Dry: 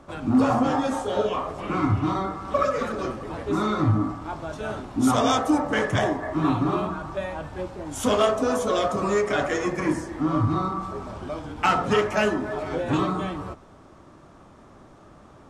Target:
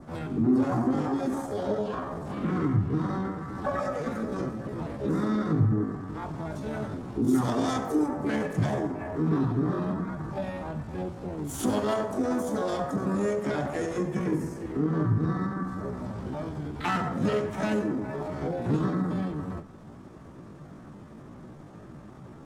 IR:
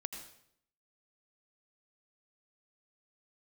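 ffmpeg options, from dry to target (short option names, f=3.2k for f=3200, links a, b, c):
-filter_complex "[0:a]equalizer=f=160:t=o:w=1.9:g=12,acompressor=threshold=-34dB:ratio=1.5,asplit=4[a][b][c][d];[b]asetrate=52444,aresample=44100,atempo=0.840896,volume=-16dB[e];[c]asetrate=58866,aresample=44100,atempo=0.749154,volume=-10dB[f];[d]asetrate=66075,aresample=44100,atempo=0.66742,volume=-11dB[g];[a][e][f][g]amix=inputs=4:normalize=0,adynamicequalizer=threshold=0.00316:dfrequency=2800:dqfactor=1.7:tfrequency=2800:tqfactor=1.7:attack=5:release=100:ratio=0.375:range=3:mode=cutabove:tftype=bell,atempo=0.69,asplit=2[h][i];[1:a]atrim=start_sample=2205,asetrate=52920,aresample=44100,highshelf=f=5.9k:g=10[j];[i][j]afir=irnorm=-1:irlink=0,volume=-7dB[k];[h][k]amix=inputs=2:normalize=0,volume=-5.5dB"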